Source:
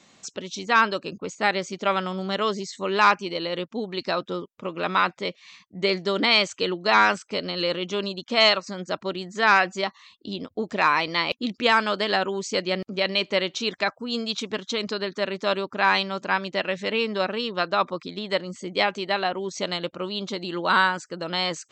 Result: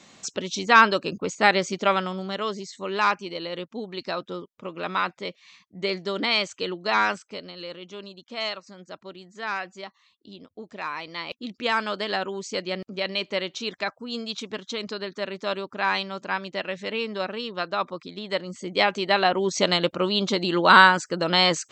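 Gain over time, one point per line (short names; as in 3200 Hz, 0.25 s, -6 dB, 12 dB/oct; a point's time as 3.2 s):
1.73 s +4 dB
2.34 s -4 dB
7.11 s -4 dB
7.56 s -12 dB
10.92 s -12 dB
11.81 s -4 dB
18.11 s -4 dB
19.5 s +6.5 dB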